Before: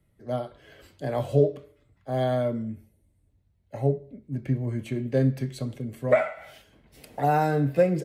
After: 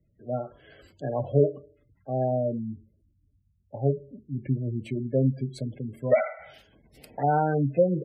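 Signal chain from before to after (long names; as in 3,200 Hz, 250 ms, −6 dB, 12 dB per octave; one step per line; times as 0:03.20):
harmonic generator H 3 −30 dB, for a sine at −7.5 dBFS
gate on every frequency bin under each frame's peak −20 dB strong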